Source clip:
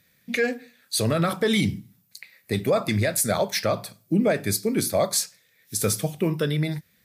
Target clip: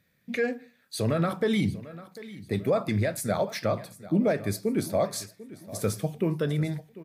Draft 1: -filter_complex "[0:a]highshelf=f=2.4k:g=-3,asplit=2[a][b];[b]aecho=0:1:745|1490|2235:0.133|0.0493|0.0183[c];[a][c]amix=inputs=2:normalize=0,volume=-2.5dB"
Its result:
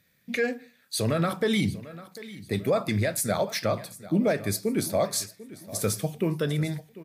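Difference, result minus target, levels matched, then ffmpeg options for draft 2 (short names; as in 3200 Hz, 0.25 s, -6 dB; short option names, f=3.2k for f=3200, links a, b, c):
4000 Hz band +4.5 dB
-filter_complex "[0:a]highshelf=f=2.4k:g=-10,asplit=2[a][b];[b]aecho=0:1:745|1490|2235:0.133|0.0493|0.0183[c];[a][c]amix=inputs=2:normalize=0,volume=-2.5dB"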